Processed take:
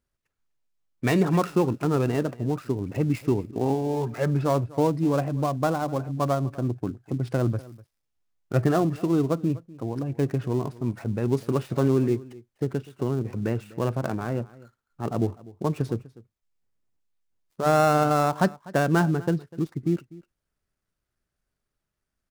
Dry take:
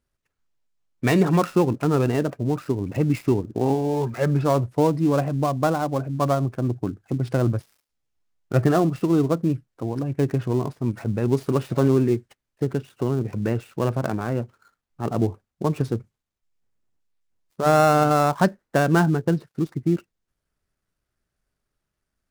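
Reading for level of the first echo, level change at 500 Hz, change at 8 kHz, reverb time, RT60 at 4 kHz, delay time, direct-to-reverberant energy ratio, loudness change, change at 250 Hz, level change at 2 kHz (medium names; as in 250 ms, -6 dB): -20.5 dB, -3.0 dB, -3.0 dB, no reverb, no reverb, 248 ms, no reverb, -3.0 dB, -3.0 dB, -3.0 dB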